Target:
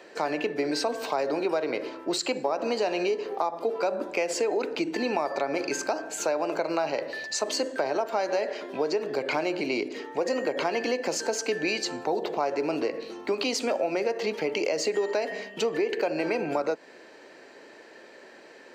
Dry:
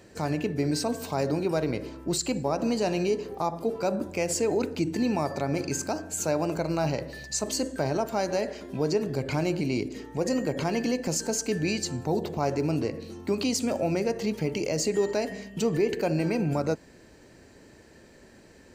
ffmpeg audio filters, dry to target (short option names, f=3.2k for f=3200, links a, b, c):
-filter_complex "[0:a]highpass=270,acrossover=split=350 4700:gain=0.224 1 0.178[a][b][c];[a][b][c]amix=inputs=3:normalize=0,acompressor=threshold=-31dB:ratio=6,volume=8dB"